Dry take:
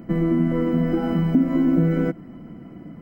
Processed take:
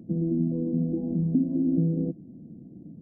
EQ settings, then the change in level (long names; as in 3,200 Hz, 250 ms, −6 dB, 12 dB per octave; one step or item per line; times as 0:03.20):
Gaussian smoothing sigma 19 samples
high-pass filter 75 Hz 12 dB per octave
−3.5 dB